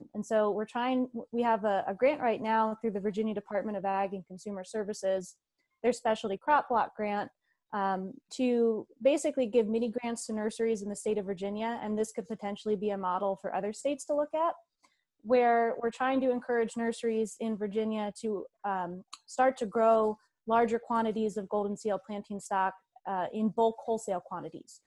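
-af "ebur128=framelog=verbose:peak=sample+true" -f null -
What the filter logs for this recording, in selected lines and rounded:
Integrated loudness:
  I:         -31.2 LUFS
  Threshold: -41.5 LUFS
Loudness range:
  LRA:         3.6 LU
  Threshold: -51.5 LUFS
  LRA low:   -33.7 LUFS
  LRA high:  -30.0 LUFS
Sample peak:
  Peak:      -13.9 dBFS
True peak:
  Peak:      -13.9 dBFS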